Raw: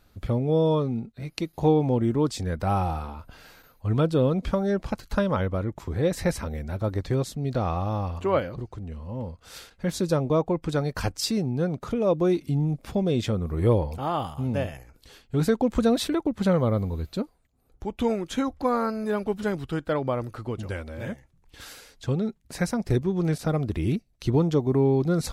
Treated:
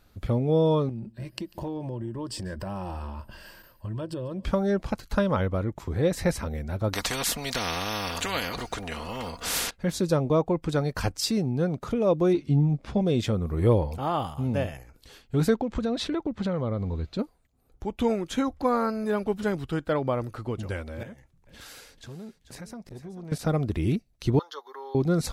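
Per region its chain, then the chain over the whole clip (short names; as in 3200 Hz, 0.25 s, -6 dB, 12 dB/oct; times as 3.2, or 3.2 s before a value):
0.89–4.45 ripple EQ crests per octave 1.3, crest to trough 11 dB + compressor 5:1, threshold -31 dBFS + echo 0.144 s -22.5 dB
6.93–9.71 comb 4.2 ms, depth 54% + spectral compressor 4:1
12.33–13.01 air absorption 86 m + doubler 14 ms -6.5 dB
15.54–17.19 LPF 5200 Hz + compressor 3:1, threshold -25 dBFS
21.03–23.32 compressor 3:1, threshold -41 dBFS + feedback echo 0.439 s, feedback 21%, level -13.5 dB + core saturation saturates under 270 Hz
24.39–24.95 steep high-pass 570 Hz + fixed phaser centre 2400 Hz, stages 6 + comb 7.2 ms, depth 46%
whole clip: dry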